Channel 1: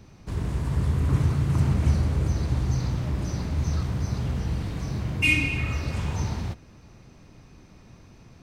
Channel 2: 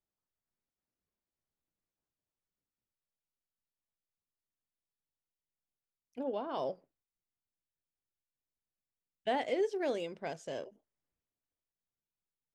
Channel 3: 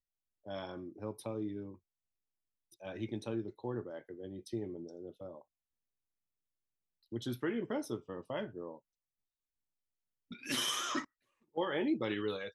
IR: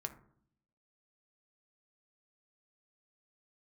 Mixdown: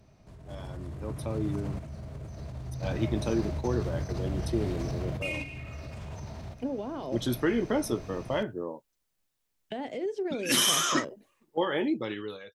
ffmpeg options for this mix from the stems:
-filter_complex "[0:a]equalizer=frequency=630:width=5:gain=13,acompressor=threshold=-26dB:ratio=6,alimiter=level_in=8.5dB:limit=-24dB:level=0:latency=1:release=88,volume=-8.5dB,volume=-4dB,asplit=2[link_01][link_02];[link_02]volume=-12.5dB[link_03];[1:a]alimiter=level_in=6dB:limit=-24dB:level=0:latency=1:release=91,volume=-6dB,acrossover=split=340[link_04][link_05];[link_05]acompressor=threshold=-54dB:ratio=2.5[link_06];[link_04][link_06]amix=inputs=2:normalize=0,adelay=450,volume=1.5dB[link_07];[2:a]dynaudnorm=framelen=190:gausssize=9:maxgain=5.5dB,adynamicequalizer=threshold=0.00355:dfrequency=5800:dqfactor=0.7:tfrequency=5800:tqfactor=0.7:attack=5:release=100:ratio=0.375:range=3:mode=boostabove:tftype=highshelf,volume=-5.5dB,asplit=2[link_08][link_09];[link_09]apad=whole_len=371593[link_10];[link_01][link_10]sidechaingate=range=-10dB:threshold=-53dB:ratio=16:detection=peak[link_11];[3:a]atrim=start_sample=2205[link_12];[link_03][link_12]afir=irnorm=-1:irlink=0[link_13];[link_11][link_07][link_08][link_13]amix=inputs=4:normalize=0,dynaudnorm=framelen=250:gausssize=11:maxgain=9dB"

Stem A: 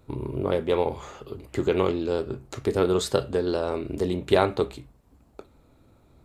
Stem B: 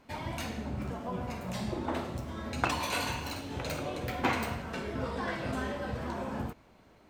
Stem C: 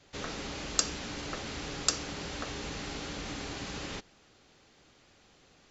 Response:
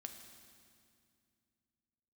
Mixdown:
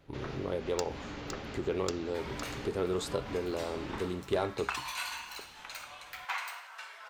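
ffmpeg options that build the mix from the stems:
-filter_complex "[0:a]asoftclip=type=tanh:threshold=-10dB,volume=-9dB,asplit=2[link_01][link_02];[1:a]highpass=frequency=950:width=0.5412,highpass=frequency=950:width=1.3066,adelay=2050,volume=-3dB[link_03];[2:a]adynamicsmooth=sensitivity=1:basefreq=3200,volume=-1.5dB,asplit=2[link_04][link_05];[link_05]volume=-14dB[link_06];[link_02]apad=whole_len=251400[link_07];[link_04][link_07]sidechaincompress=threshold=-37dB:ratio=8:attack=29:release=178[link_08];[link_06]aecho=0:1:510:1[link_09];[link_01][link_03][link_08][link_09]amix=inputs=4:normalize=0"

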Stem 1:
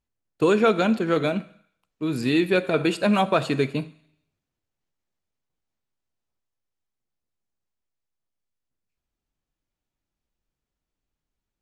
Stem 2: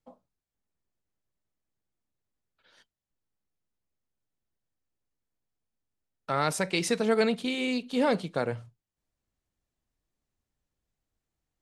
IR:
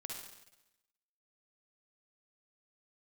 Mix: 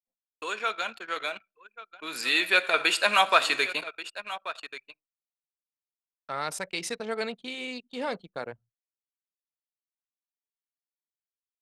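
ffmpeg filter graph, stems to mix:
-filter_complex "[0:a]highpass=1200,dynaudnorm=framelen=530:gausssize=7:maxgain=12dB,volume=-3dB,asplit=2[link_01][link_02];[link_02]volume=-14.5dB[link_03];[1:a]lowshelf=frequency=400:gain=-12,volume=-2.5dB[link_04];[link_03]aecho=0:1:1134:1[link_05];[link_01][link_04][link_05]amix=inputs=3:normalize=0,agate=range=-33dB:threshold=-49dB:ratio=3:detection=peak,anlmdn=0.251"

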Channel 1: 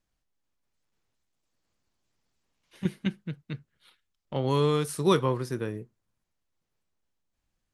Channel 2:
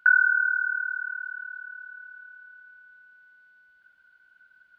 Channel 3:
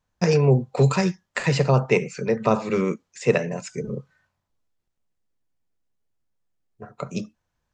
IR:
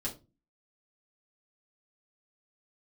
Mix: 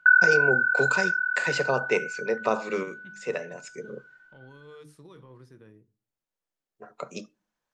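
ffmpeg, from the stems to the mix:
-filter_complex "[0:a]bandreject=frequency=50:width_type=h:width=6,bandreject=frequency=100:width_type=h:width=6,bandreject=frequency=150:width_type=h:width=6,bandreject=frequency=200:width_type=h:width=6,bandreject=frequency=250:width_type=h:width=6,bandreject=frequency=300:width_type=h:width=6,alimiter=limit=-23dB:level=0:latency=1:release=18,highshelf=frequency=7600:gain=-9.5,volume=-19.5dB,asplit=3[link_01][link_02][link_03];[link_02]volume=-13dB[link_04];[1:a]dynaudnorm=framelen=130:gausssize=13:maxgain=7dB,lowpass=frequency=1600:poles=1,aecho=1:1:6:0.46,volume=1.5dB,asplit=2[link_05][link_06];[link_06]volume=-16.5dB[link_07];[2:a]highpass=340,volume=-3.5dB,asplit=2[link_08][link_09];[link_09]volume=-21.5dB[link_10];[link_03]apad=whole_len=341108[link_11];[link_08][link_11]sidechaincompress=threshold=-56dB:ratio=4:attack=9.9:release=840[link_12];[3:a]atrim=start_sample=2205[link_13];[link_04][link_07][link_10]amix=inputs=3:normalize=0[link_14];[link_14][link_13]afir=irnorm=-1:irlink=0[link_15];[link_01][link_05][link_12][link_15]amix=inputs=4:normalize=0"

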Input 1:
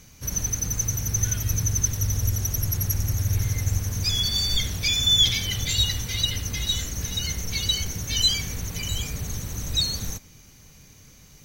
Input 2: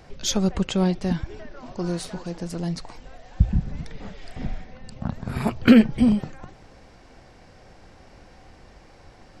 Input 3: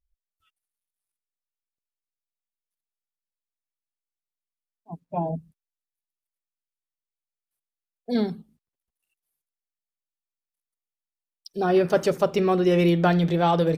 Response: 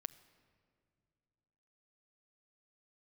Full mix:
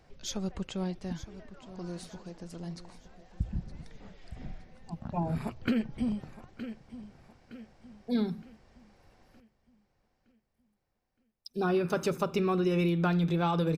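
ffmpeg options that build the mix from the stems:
-filter_complex "[1:a]volume=-12.5dB,asplit=2[link_01][link_02];[link_02]volume=-15dB[link_03];[2:a]aecho=1:1:0.8:0.46,volume=-4dB[link_04];[link_03]aecho=0:1:916|1832|2748|3664|4580|5496:1|0.43|0.185|0.0795|0.0342|0.0147[link_05];[link_01][link_04][link_05]amix=inputs=3:normalize=0,acompressor=threshold=-24dB:ratio=6"

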